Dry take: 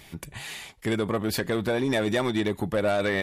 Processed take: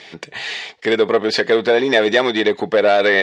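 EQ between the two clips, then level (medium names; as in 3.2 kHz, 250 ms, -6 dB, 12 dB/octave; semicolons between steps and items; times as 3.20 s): cabinet simulation 240–5100 Hz, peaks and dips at 450 Hz +10 dB, 710 Hz +6 dB, 1.8 kHz +5 dB; treble shelf 2.3 kHz +10 dB; +5.5 dB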